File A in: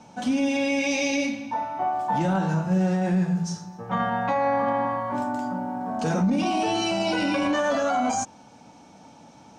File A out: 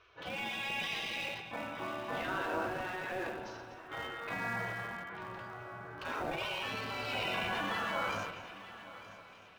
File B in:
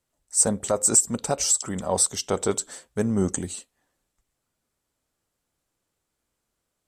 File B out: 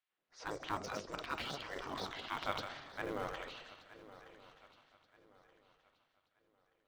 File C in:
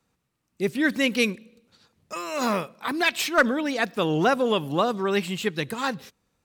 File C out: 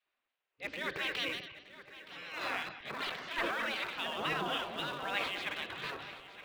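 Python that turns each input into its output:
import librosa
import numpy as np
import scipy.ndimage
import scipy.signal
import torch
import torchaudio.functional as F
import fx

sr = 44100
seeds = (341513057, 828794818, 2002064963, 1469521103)

p1 = fx.reverse_delay_fb(x, sr, ms=117, feedback_pct=50, wet_db=-12)
p2 = fx.spec_gate(p1, sr, threshold_db=-15, keep='weak')
p3 = scipy.signal.sosfilt(scipy.signal.butter(4, 3400.0, 'lowpass', fs=sr, output='sos'), p2)
p4 = fx.low_shelf(p3, sr, hz=370.0, db=-3.0)
p5 = fx.notch(p4, sr, hz=870.0, q=17.0)
p6 = fx.transient(p5, sr, attack_db=-3, sustain_db=7)
p7 = np.where(np.abs(p6) >= 10.0 ** (-34.0 / 20.0), p6, 0.0)
p8 = p6 + F.gain(torch.from_numpy(p7), -10.5).numpy()
p9 = fx.echo_swing(p8, sr, ms=1227, ratio=3, feedback_pct=31, wet_db=-16)
y = F.gain(torch.from_numpy(p9), -2.5).numpy()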